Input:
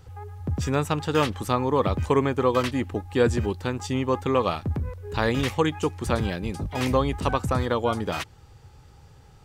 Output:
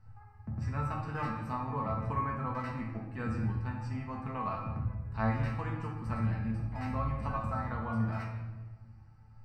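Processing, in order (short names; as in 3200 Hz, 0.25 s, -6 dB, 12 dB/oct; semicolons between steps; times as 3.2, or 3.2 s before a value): running mean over 13 samples; bell 420 Hz -15 dB 1.2 oct; notch 420 Hz, Q 12; resonator 110 Hz, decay 0.22 s, harmonics all, mix 90%; shoebox room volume 880 m³, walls mixed, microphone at 1.5 m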